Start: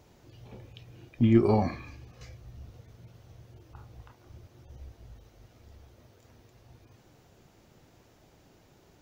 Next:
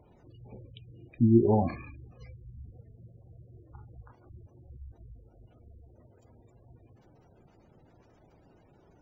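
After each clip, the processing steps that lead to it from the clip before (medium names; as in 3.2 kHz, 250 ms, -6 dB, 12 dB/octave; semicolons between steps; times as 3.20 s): spectral gate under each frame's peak -20 dB strong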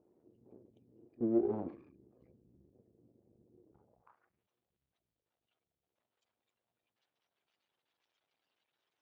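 half-wave rectifier; reverse echo 36 ms -23.5 dB; band-pass sweep 350 Hz -> 3.5 kHz, 3.72–4.48 s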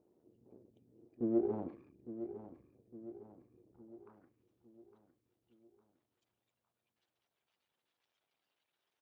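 feedback delay 858 ms, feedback 49%, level -11.5 dB; trim -1.5 dB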